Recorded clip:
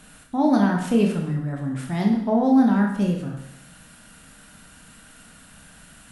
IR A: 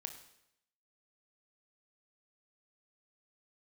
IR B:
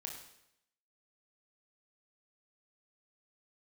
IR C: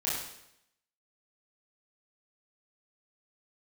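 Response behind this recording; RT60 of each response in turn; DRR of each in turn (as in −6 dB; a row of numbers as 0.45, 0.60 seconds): B; 0.80, 0.80, 0.80 seconds; 6.0, 0.5, −8.0 decibels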